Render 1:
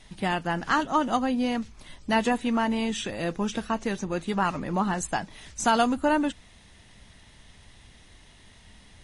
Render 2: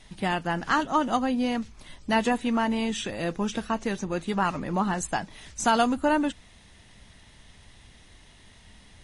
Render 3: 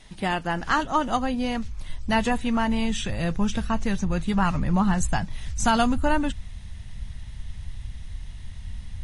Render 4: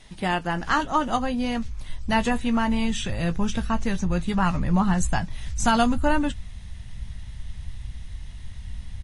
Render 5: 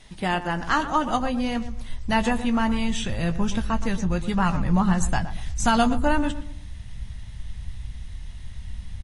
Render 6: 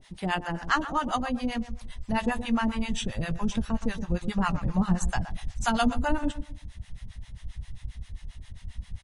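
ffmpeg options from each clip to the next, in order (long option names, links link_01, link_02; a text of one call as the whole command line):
ffmpeg -i in.wav -af anull out.wav
ffmpeg -i in.wav -af "asubboost=boost=11:cutoff=110,volume=1.5dB" out.wav
ffmpeg -i in.wav -filter_complex "[0:a]asplit=2[link_01][link_02];[link_02]adelay=17,volume=-12dB[link_03];[link_01][link_03]amix=inputs=2:normalize=0" out.wav
ffmpeg -i in.wav -filter_complex "[0:a]asplit=2[link_01][link_02];[link_02]adelay=119,lowpass=frequency=1400:poles=1,volume=-11dB,asplit=2[link_03][link_04];[link_04]adelay=119,lowpass=frequency=1400:poles=1,volume=0.35,asplit=2[link_05][link_06];[link_06]adelay=119,lowpass=frequency=1400:poles=1,volume=0.35,asplit=2[link_07][link_08];[link_08]adelay=119,lowpass=frequency=1400:poles=1,volume=0.35[link_09];[link_01][link_03][link_05][link_07][link_09]amix=inputs=5:normalize=0" out.wav
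ffmpeg -i in.wav -filter_complex "[0:a]acrossover=split=640[link_01][link_02];[link_01]aeval=exprs='val(0)*(1-1/2+1/2*cos(2*PI*7.5*n/s))':channel_layout=same[link_03];[link_02]aeval=exprs='val(0)*(1-1/2-1/2*cos(2*PI*7.5*n/s))':channel_layout=same[link_04];[link_03][link_04]amix=inputs=2:normalize=0" out.wav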